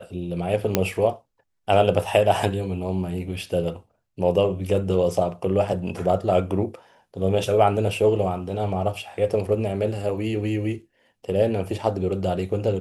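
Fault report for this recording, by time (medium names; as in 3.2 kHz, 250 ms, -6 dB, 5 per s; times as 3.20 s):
0.75 s: pop -3 dBFS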